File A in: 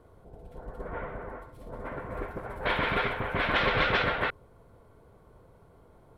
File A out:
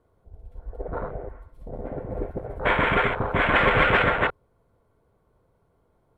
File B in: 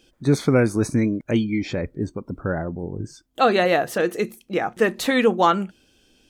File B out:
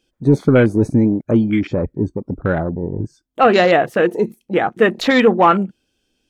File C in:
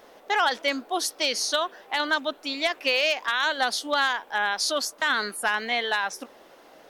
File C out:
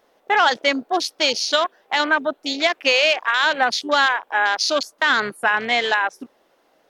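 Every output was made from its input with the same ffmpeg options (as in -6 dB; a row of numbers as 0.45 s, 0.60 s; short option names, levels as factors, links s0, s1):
-af "acontrast=81,afwtdn=0.0562"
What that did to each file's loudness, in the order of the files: +6.5 LU, +5.5 LU, +6.0 LU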